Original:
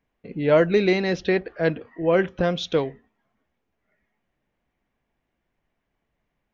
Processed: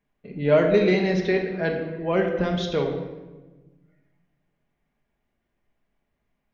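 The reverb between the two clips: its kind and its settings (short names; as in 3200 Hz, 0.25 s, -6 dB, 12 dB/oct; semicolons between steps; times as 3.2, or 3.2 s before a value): shoebox room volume 820 m³, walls mixed, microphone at 1.3 m; gain -3.5 dB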